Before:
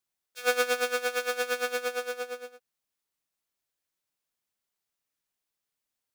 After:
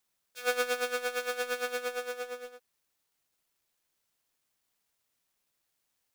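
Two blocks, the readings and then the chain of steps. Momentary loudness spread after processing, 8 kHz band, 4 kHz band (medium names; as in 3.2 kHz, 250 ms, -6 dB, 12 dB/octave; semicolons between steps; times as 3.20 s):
12 LU, -4.0 dB, -3.5 dB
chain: companding laws mixed up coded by mu; trim -4.5 dB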